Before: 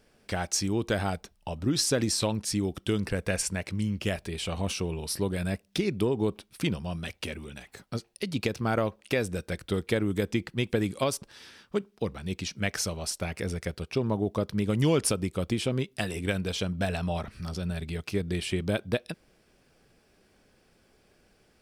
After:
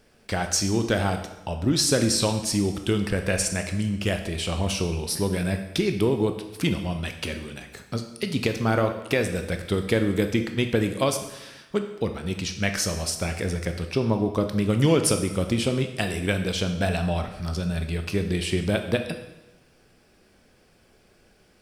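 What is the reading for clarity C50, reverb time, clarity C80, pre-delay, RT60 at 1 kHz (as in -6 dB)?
9.0 dB, 1.0 s, 11.0 dB, 7 ms, 1.0 s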